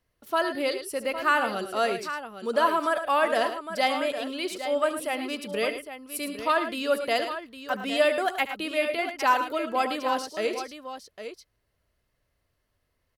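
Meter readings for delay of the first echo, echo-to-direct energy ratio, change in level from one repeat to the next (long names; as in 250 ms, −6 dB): 73 ms, −7.0 dB, repeats not evenly spaced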